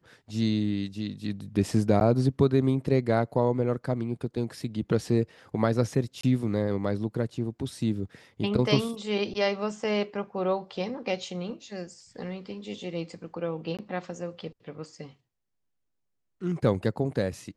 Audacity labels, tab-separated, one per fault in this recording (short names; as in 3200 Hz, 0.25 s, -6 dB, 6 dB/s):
2.000000	2.010000	gap 9.6 ms
6.210000	6.230000	gap 24 ms
13.770000	13.790000	gap 17 ms